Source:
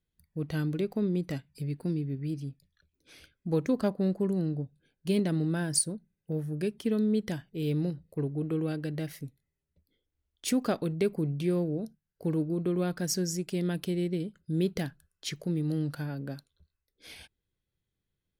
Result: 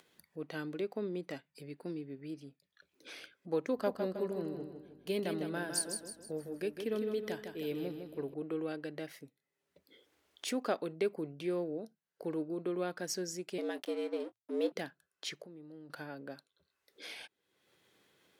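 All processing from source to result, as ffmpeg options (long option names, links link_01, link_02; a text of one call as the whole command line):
ffmpeg -i in.wav -filter_complex "[0:a]asettb=1/sr,asplit=3[link_01][link_02][link_03];[link_01]atrim=end=3.714[link_04];[link_02]atrim=start=3.71:end=8.34,asetpts=PTS-STARTPTS,afade=type=in:duration=0.004:curve=qsin,afade=type=out:start_time=4.626:duration=0.004:curve=qsin,equalizer=frequency=13000:width=3.6:gain=14,aeval=exprs='val(0)+0.00794*(sin(2*PI*50*n/s)+sin(2*PI*2*50*n/s)/2+sin(2*PI*3*50*n/s)/3+sin(2*PI*4*50*n/s)/4+sin(2*PI*5*50*n/s)/5)':channel_layout=same,aecho=1:1:157|314|471|628|785:0.473|0.199|0.0835|0.0351|0.0147,atrim=end_sample=204183[link_05];[link_03]atrim=start=8.336[link_06];[link_04][link_05]acrossfade=duration=0.004:curve1=hsin:curve2=qsin[link_07];[link_07][link_06]acrossfade=duration=0.004:curve1=qsin:curve2=hsin,asettb=1/sr,asplit=3[link_08][link_09][link_10];[link_08]atrim=end=13.584[link_11];[link_09]atrim=start=13.58:end=14.72,asetpts=PTS-STARTPTS,afade=type=in:duration=0.004:curve=qsin,afade=type=out:start_time=1.136:duration=0.004:curve=qsin,aeval=exprs='sgn(val(0))*max(abs(val(0))-0.00447,0)':channel_layout=same,afreqshift=110,asplit=2[link_12][link_13];[link_13]adelay=23,volume=-13dB[link_14];[link_12][link_14]amix=inputs=2:normalize=0,atrim=end_sample=50274[link_15];[link_10]atrim=start=14.716[link_16];[link_11][link_15]acrossfade=duration=0.004:curve1=hsin:curve2=qsin[link_17];[link_17][link_16]acrossfade=duration=0.004:curve1=qsin:curve2=hsin,asettb=1/sr,asplit=3[link_18][link_19][link_20];[link_18]atrim=end=15.424[link_21];[link_19]atrim=start=15.42:end=15.9,asetpts=PTS-STARTPTS,afade=type=in:duration=0.004:curve=qsin,afade=type=out:start_time=0.476:duration=0.004:curve=qsin,highshelf=frequency=2000:gain=-9.5,acompressor=threshold=-40dB:ratio=6:attack=3.2:release=140:knee=1:detection=peak[link_22];[link_20]atrim=start=15.896[link_23];[link_21][link_22]acrossfade=duration=0.004:curve1=hsin:curve2=qsin[link_24];[link_24][link_23]acrossfade=duration=0.004:curve1=qsin:curve2=hsin,aemphasis=mode=reproduction:type=cd,acompressor=mode=upward:threshold=-37dB:ratio=2.5,highpass=400,volume=-1.5dB" out.wav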